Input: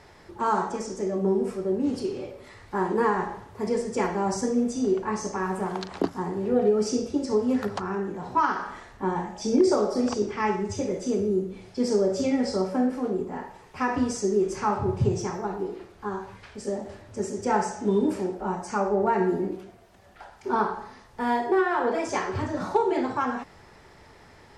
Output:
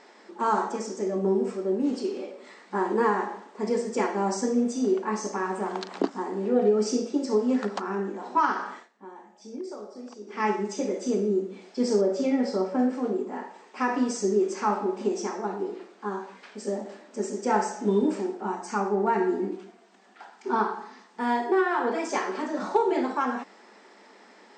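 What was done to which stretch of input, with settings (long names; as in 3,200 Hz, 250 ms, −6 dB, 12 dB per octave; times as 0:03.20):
0:08.73–0:10.42: duck −16.5 dB, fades 0.16 s
0:12.01–0:12.79: low-pass filter 3,200 Hz 6 dB per octave
0:18.21–0:22.12: parametric band 570 Hz −11 dB 0.25 octaves
whole clip: brick-wall band-pass 190–8,700 Hz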